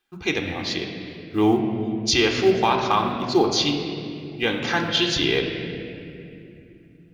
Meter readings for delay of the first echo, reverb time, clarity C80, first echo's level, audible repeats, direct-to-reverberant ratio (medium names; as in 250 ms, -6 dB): no echo, 2.7 s, 5.5 dB, no echo, no echo, 2.0 dB